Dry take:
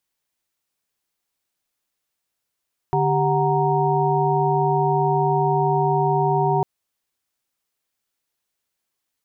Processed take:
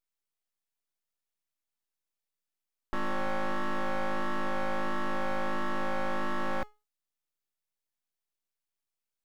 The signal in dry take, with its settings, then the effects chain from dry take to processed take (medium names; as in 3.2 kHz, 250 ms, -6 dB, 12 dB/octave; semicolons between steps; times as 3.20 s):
chord D3/G4/F#5/A#5 sine, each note -22 dBFS 3.70 s
feedback comb 420 Hz, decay 0.29 s, harmonics all, mix 70%; full-wave rectifier